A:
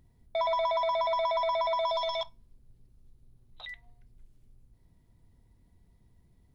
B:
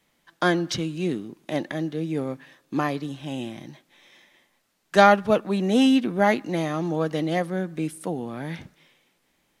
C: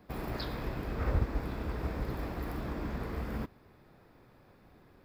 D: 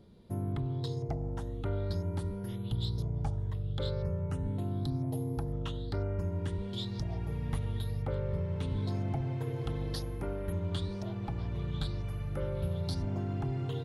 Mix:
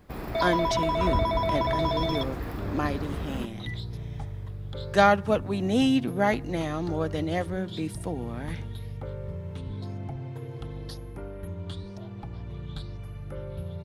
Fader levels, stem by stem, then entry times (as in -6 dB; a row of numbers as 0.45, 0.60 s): +1.0, -4.0, +2.0, -2.5 dB; 0.00, 0.00, 0.00, 0.95 s